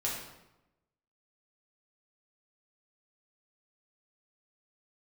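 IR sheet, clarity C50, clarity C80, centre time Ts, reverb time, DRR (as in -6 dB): 2.5 dB, 5.0 dB, 52 ms, 0.95 s, -5.0 dB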